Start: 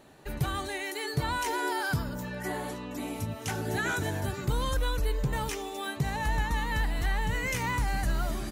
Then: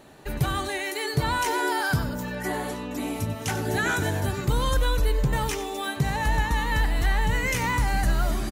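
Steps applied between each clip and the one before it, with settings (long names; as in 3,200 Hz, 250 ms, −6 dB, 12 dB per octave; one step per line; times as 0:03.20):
slap from a distant wall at 16 metres, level −13 dB
level +5 dB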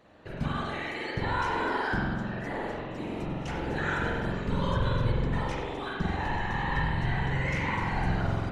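low-pass filter 4,100 Hz 12 dB per octave
random phases in short frames
convolution reverb RT60 1.4 s, pre-delay 45 ms, DRR −2.5 dB
level −8.5 dB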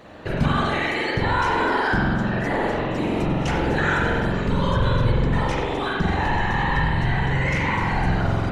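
in parallel at +2 dB: brickwall limiter −27.5 dBFS, peak gain reduction 11 dB
on the sum: speech leveller within 4 dB 2 s
level +4 dB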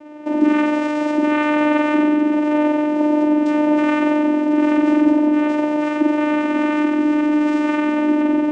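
parametric band 3,000 Hz −9.5 dB 2 octaves
channel vocoder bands 4, saw 300 Hz
level +7.5 dB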